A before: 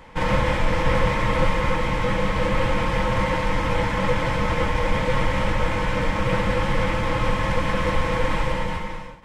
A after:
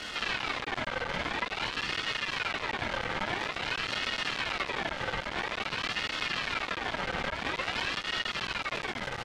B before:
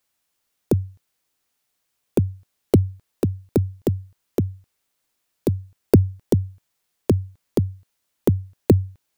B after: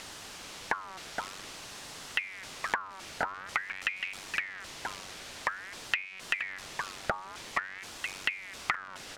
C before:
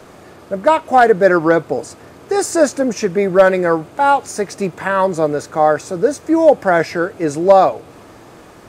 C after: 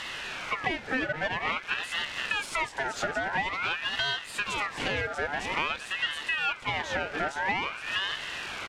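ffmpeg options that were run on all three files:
-filter_complex "[0:a]aeval=exprs='val(0)+0.5*0.0422*sgn(val(0))':c=same,asplit=2[a][b];[b]aecho=0:1:469:0.282[c];[a][c]amix=inputs=2:normalize=0,aeval=exprs='max(val(0),0)':c=same,acompressor=threshold=-24dB:ratio=8,highpass=150,lowpass=5.2k,aeval=exprs='val(0)*sin(2*PI*1700*n/s+1700*0.4/0.49*sin(2*PI*0.49*n/s))':c=same,volume=3dB"

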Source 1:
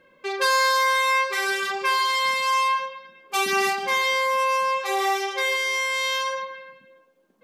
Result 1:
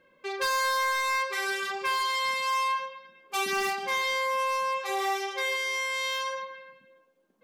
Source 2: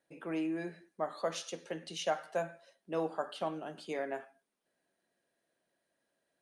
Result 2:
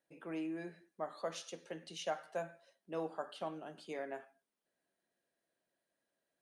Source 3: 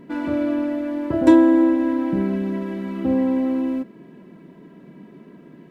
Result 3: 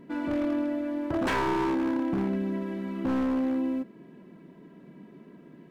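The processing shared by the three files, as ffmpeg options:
-af "aeval=exprs='0.158*(abs(mod(val(0)/0.158+3,4)-2)-1)':c=same,volume=-5.5dB"

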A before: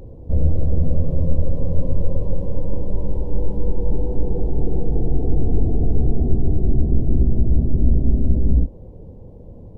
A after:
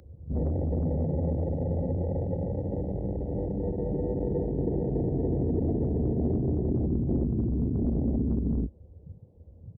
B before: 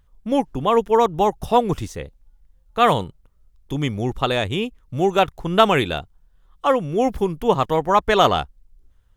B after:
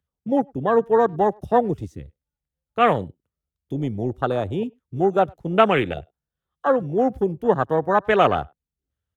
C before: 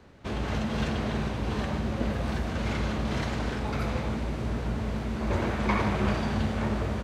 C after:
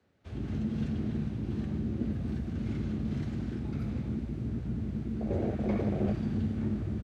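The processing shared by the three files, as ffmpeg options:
-filter_complex "[0:a]afwtdn=0.0794,highpass=f=70:w=0.5412,highpass=f=70:w=1.3066,equalizer=f=1k:w=3.9:g=-6,acrossover=split=210|1000[a][b][c];[a]asoftclip=type=tanh:threshold=-27dB[d];[d][b][c]amix=inputs=3:normalize=0,asplit=2[e][f];[f]adelay=100,highpass=300,lowpass=3.4k,asoftclip=type=hard:threshold=-10dB,volume=-29dB[g];[e][g]amix=inputs=2:normalize=0"

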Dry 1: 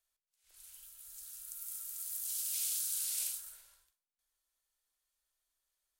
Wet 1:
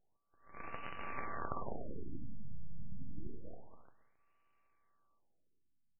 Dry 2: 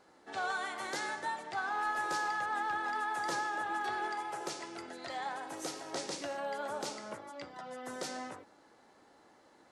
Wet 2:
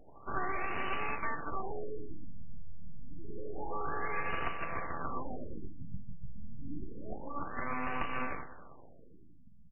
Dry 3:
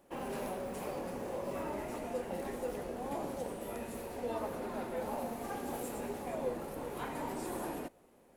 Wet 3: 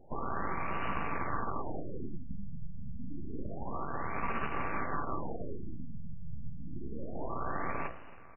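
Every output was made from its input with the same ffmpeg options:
-af "lowshelf=f=160:g=-5.5,bandreject=f=60:t=h:w=6,bandreject=f=120:t=h:w=6,bandreject=f=180:t=h:w=6,bandreject=f=240:t=h:w=6,bandreject=f=300:t=h:w=6,bandreject=f=360:t=h:w=6,bandreject=f=420:t=h:w=6,bandreject=f=480:t=h:w=6,bandreject=f=540:t=h:w=6,acompressor=threshold=-43dB:ratio=4,acrusher=bits=2:mode=log:mix=0:aa=0.000001,aeval=exprs='val(0)*sin(2*PI*580*n/s)':c=same,aeval=exprs='abs(val(0))':c=same,aecho=1:1:271|542:0.133|0.0293,afftfilt=real='re*lt(b*sr/1024,210*pow(3000/210,0.5+0.5*sin(2*PI*0.28*pts/sr)))':imag='im*lt(b*sr/1024,210*pow(3000/210,0.5+0.5*sin(2*PI*0.28*pts/sr)))':win_size=1024:overlap=0.75,volume=16dB"

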